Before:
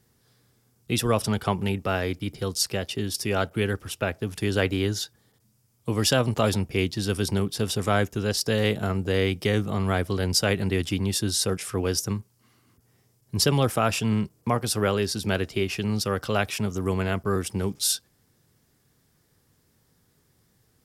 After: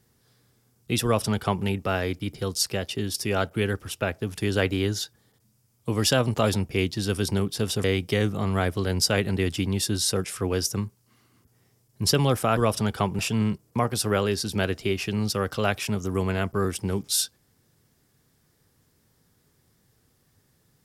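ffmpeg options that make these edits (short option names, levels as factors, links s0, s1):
-filter_complex "[0:a]asplit=4[s0][s1][s2][s3];[s0]atrim=end=7.842[s4];[s1]atrim=start=9.168:end=13.902[s5];[s2]atrim=start=1.038:end=1.662[s6];[s3]atrim=start=13.898[s7];[s4][s5]acrossfade=d=0.004:c1=hsin:c2=hsin[s8];[s8][s6]acrossfade=d=0.004:c1=hsin:c2=hsin[s9];[s9][s7]acrossfade=d=0.004:c1=hsin:c2=hsin"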